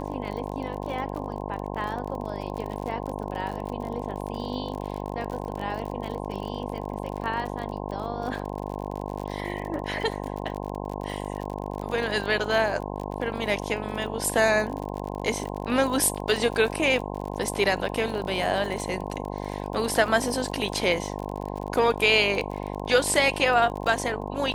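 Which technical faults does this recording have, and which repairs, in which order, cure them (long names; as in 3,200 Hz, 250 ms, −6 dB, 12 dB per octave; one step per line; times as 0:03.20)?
mains buzz 50 Hz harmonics 21 −33 dBFS
surface crackle 44 per second −32 dBFS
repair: click removal
hum removal 50 Hz, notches 21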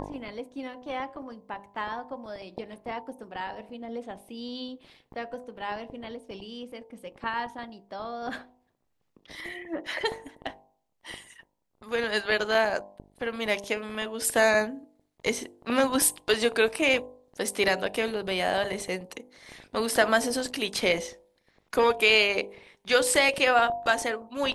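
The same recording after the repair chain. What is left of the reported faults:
none of them is left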